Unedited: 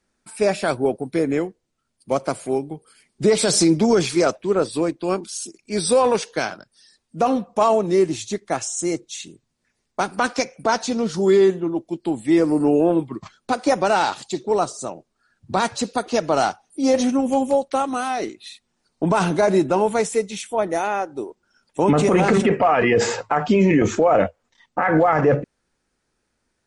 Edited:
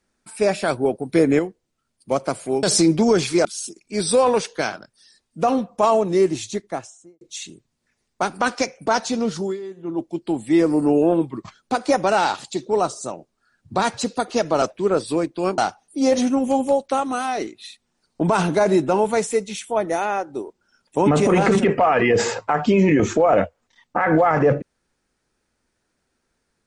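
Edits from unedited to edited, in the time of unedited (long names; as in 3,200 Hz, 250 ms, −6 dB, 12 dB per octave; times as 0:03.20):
0:01.09–0:01.39: clip gain +4.5 dB
0:02.63–0:03.45: remove
0:04.27–0:05.23: move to 0:16.40
0:08.23–0:08.99: fade out and dull
0:11.11–0:11.78: duck −18.5 dB, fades 0.24 s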